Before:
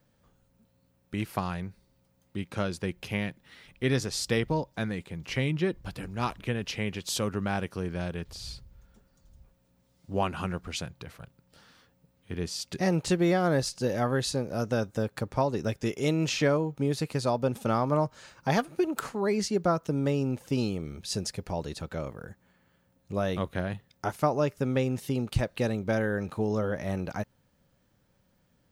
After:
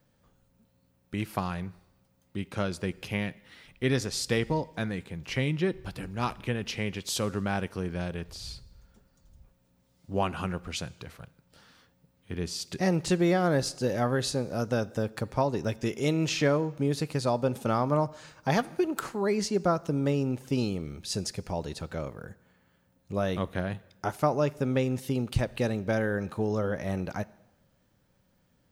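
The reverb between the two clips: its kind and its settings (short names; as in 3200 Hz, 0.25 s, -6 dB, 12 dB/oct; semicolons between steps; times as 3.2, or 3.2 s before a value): plate-style reverb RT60 1 s, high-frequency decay 0.95×, DRR 19 dB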